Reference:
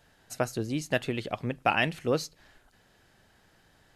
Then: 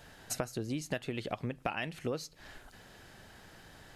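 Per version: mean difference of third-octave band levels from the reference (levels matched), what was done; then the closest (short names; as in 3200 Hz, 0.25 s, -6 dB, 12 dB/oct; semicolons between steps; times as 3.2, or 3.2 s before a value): 5.0 dB: compressor 8:1, threshold -41 dBFS, peak gain reduction 21 dB; gain +8 dB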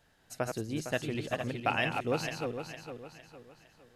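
7.5 dB: regenerating reverse delay 0.229 s, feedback 62%, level -5 dB; gain -5 dB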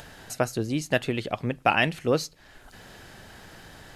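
1.0 dB: upward compressor, threshold -38 dBFS; gain +3.5 dB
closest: third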